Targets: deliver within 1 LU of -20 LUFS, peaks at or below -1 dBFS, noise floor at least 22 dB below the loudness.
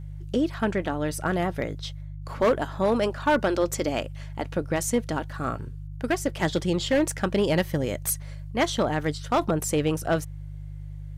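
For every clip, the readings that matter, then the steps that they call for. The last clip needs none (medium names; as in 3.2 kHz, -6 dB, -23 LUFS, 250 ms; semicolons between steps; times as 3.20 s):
clipped samples 0.9%; clipping level -15.5 dBFS; hum 50 Hz; highest harmonic 150 Hz; hum level -35 dBFS; loudness -26.5 LUFS; peak level -15.5 dBFS; loudness target -20.0 LUFS
-> clip repair -15.5 dBFS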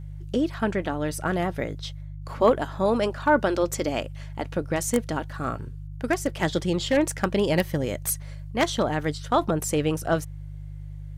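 clipped samples 0.0%; hum 50 Hz; highest harmonic 150 Hz; hum level -35 dBFS
-> de-hum 50 Hz, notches 3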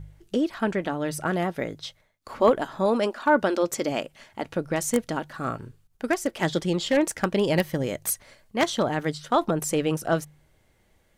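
hum not found; loudness -26.0 LUFS; peak level -6.0 dBFS; loudness target -20.0 LUFS
-> trim +6 dB; peak limiter -1 dBFS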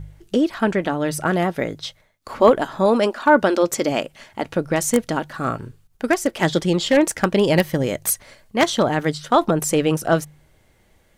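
loudness -20.0 LUFS; peak level -1.0 dBFS; noise floor -58 dBFS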